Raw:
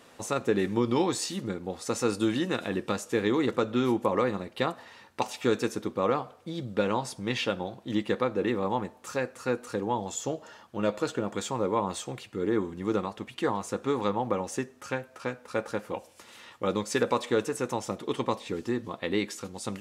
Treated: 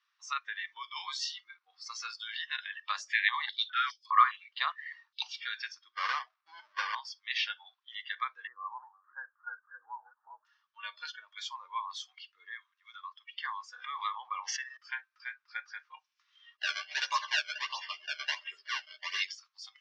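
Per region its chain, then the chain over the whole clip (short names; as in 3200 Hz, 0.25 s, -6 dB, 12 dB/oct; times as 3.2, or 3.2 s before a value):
2.88–5.22 high shelf 8800 Hz +12 dB + stepped high-pass 4.9 Hz 600–4900 Hz
5.95–6.95 half-waves squared off + tilt shelf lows +10 dB, about 1100 Hz
8.47–10.45 reverse delay 0.332 s, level -9 dB + steep low-pass 1600 Hz 72 dB/oct
12.56–13.15 HPF 1000 Hz 24 dB/oct + mismatched tape noise reduction decoder only
13.76–14.77 air absorption 100 m + fast leveller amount 70%
16.57–19.3 decimation with a swept rate 27×, swing 160% 1.4 Hz + doubler 13 ms -2 dB + small resonant body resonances 390/600/2800 Hz, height 16 dB, ringing for 70 ms
whole clip: spectral noise reduction 21 dB; Chebyshev band-pass 1100–5800 Hz, order 4; gain +1 dB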